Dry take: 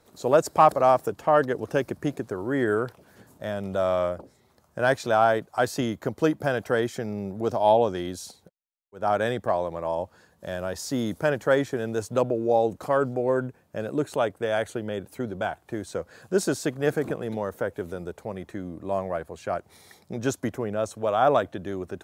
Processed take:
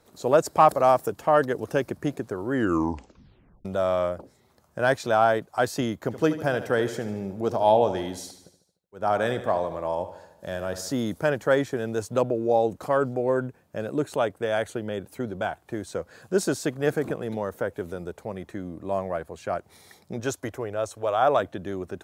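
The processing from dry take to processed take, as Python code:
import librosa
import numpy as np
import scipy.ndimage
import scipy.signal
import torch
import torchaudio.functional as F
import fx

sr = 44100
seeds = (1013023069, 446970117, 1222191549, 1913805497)

y = fx.high_shelf(x, sr, hz=7000.0, db=6.0, at=(0.68, 1.74))
y = fx.echo_feedback(y, sr, ms=75, feedback_pct=57, wet_db=-12.5, at=(6.1, 10.91), fade=0.02)
y = fx.peak_eq(y, sr, hz=200.0, db=-12.0, octaves=0.77, at=(20.2, 21.4))
y = fx.edit(y, sr, fx.tape_stop(start_s=2.51, length_s=1.14), tone=tone)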